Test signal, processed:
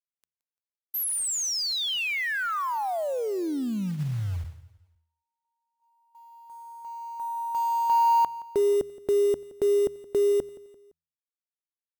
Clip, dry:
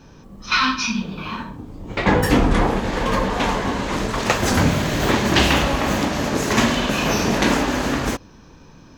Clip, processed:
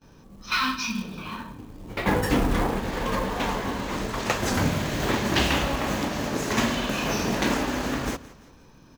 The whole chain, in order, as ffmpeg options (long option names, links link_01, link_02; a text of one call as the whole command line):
ffmpeg -i in.wav -filter_complex "[0:a]bandreject=frequency=81.12:width_type=h:width=4,bandreject=frequency=162.24:width_type=h:width=4,agate=range=-21dB:threshold=-49dB:ratio=16:detection=peak,acrusher=bits=5:mode=log:mix=0:aa=0.000001,asplit=2[link_01][link_02];[link_02]aecho=0:1:171|342|513:0.112|0.0494|0.0217[link_03];[link_01][link_03]amix=inputs=2:normalize=0,volume=-6.5dB" out.wav